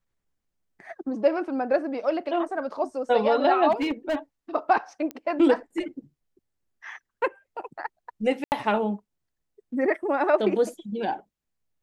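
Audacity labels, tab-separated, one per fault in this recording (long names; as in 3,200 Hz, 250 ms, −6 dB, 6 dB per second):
3.710000	4.160000	clipping −21.5 dBFS
5.110000	5.110000	click −19 dBFS
8.440000	8.520000	drop-out 79 ms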